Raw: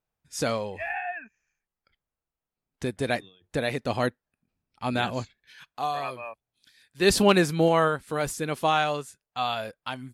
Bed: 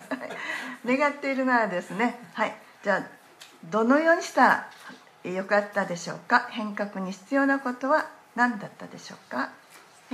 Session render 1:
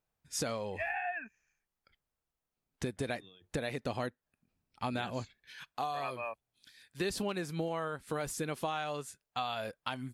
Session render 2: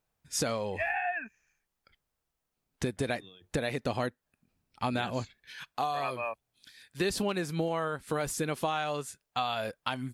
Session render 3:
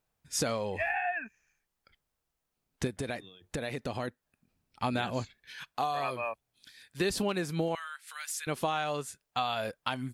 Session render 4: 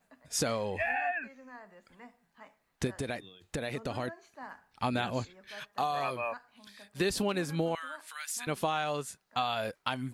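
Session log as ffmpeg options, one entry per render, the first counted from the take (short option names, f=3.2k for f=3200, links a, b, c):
-af "acompressor=threshold=-32dB:ratio=10"
-af "volume=4.5dB"
-filter_complex "[0:a]asettb=1/sr,asplit=3[a][b][c];[a]atrim=end=2.874[d];[b]atrim=start=2.87:end=4.08,asetpts=PTS-STARTPTS,afade=t=in:d=0.004:c=qsin,afade=t=out:st=1.206:d=0.004:c=qsin,acompressor=threshold=-33dB:ratio=2:attack=3.2:release=140:knee=1:detection=peak[e];[c]atrim=start=4.076[f];[d][e]acrossfade=d=0.004:c1=hsin:c2=qsin[g];[g][f]acrossfade=d=0.004:c1=qsin:c2=hsin,asettb=1/sr,asplit=3[h][i][j];[h]atrim=end=7.754[k];[i]atrim=start=7.75:end=8.47,asetpts=PTS-STARTPTS,afade=t=in:d=0.004:c=qsin,afade=t=out:st=0.716:d=0.004:c=qsin,highpass=f=1.5k:w=0.5412,highpass=f=1.5k:w=1.3066[l];[j]atrim=start=8.466[m];[k][l]acrossfade=d=0.004:c1=hsin:c2=qsin[n];[n][m]acrossfade=d=0.004:c1=qsin:c2=hsin"
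-filter_complex "[1:a]volume=-27dB[a];[0:a][a]amix=inputs=2:normalize=0"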